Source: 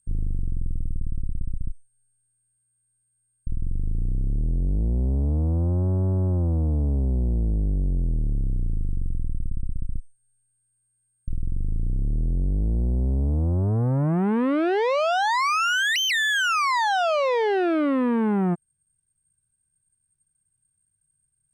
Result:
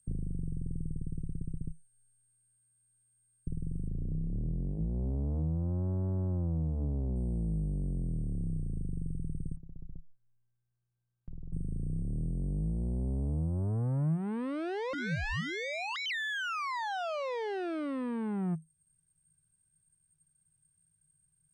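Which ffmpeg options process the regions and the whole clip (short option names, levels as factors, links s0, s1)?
-filter_complex "[0:a]asettb=1/sr,asplit=3[s0][s1][s2];[s0]atrim=end=3.884[s3];[s1]atrim=start=3.88:end=7.16,asetpts=PTS-STARTPTS,afade=t=in:d=0.004:c=qsin,afade=t=out:st=3.276:d=0.004:c=qsin,highshelf=f=4200:t=q:w=3:g=-10,bandreject=f=50:t=h:w=6,bandreject=f=100:t=h:w=6,bandreject=f=150:t=h:w=6,bandreject=f=200:t=h:w=6,bandreject=f=250:t=h:w=6,bandreject=f=300:t=h:w=6[s4];[s2]atrim=start=7.156[s5];[s3][s4]acrossfade=d=0.004:c1=hsin:c2=qsin[s6];[s6][s5]acrossfade=d=0.004:c1=qsin:c2=hsin,asettb=1/sr,asplit=3[s7][s8][s9];[s7]atrim=end=9.564[s10];[s8]atrim=start=9.56:end=11.53,asetpts=PTS-STARTPTS,afade=t=in:d=0.004:c=qsin,afade=t=out:st=1.966:d=0.004:c=qsin,lowpass=1100,acompressor=threshold=0.01:ratio=4:attack=3.2:release=140:knee=1:detection=peak[s11];[s9]atrim=start=11.526[s12];[s10][s11]acrossfade=d=0.004:c1=hsin:c2=qsin[s13];[s13][s12]acrossfade=d=0.004:c1=qsin:c2=hsin,asettb=1/sr,asplit=3[s14][s15][s16];[s14]atrim=end=14.934[s17];[s15]atrim=start=14.93:end=16.06,asetpts=PTS-STARTPTS,afade=t=in:d=0.004:c=qsin,afade=t=out:st=1.126:d=0.004:c=qsin,lowpass=f=7600:t=q:w=1.9,aeval=exprs='val(0)*sin(2*PI*860*n/s)':c=same[s18];[s16]atrim=start=16.056[s19];[s17][s18]acrossfade=d=0.004:c1=hsin:c2=qsin[s20];[s20][s19]acrossfade=d=0.004:c1=qsin:c2=hsin,acrossover=split=4200[s21][s22];[s22]acompressor=threshold=0.00794:ratio=4:attack=1:release=60[s23];[s21][s23]amix=inputs=2:normalize=0,equalizer=f=160:w=6.5:g=11.5,acrossover=split=100|4900[s24][s25][s26];[s24]acompressor=threshold=0.0141:ratio=4[s27];[s25]acompressor=threshold=0.0158:ratio=4[s28];[s26]acompressor=threshold=0.00112:ratio=4[s29];[s27][s28][s29]amix=inputs=3:normalize=0"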